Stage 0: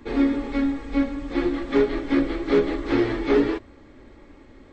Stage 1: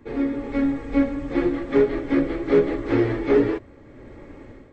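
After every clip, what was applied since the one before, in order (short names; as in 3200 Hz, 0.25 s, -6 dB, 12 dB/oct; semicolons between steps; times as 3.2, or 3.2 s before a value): ten-band EQ 125 Hz +10 dB, 500 Hz +6 dB, 2000 Hz +3 dB, 4000 Hz -5 dB; AGC gain up to 11.5 dB; gain -7.5 dB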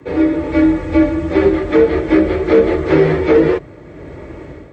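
frequency shift +40 Hz; maximiser +11 dB; gain -1 dB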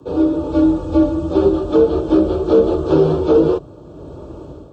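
Butterworth band-stop 2000 Hz, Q 1.1; gain -1.5 dB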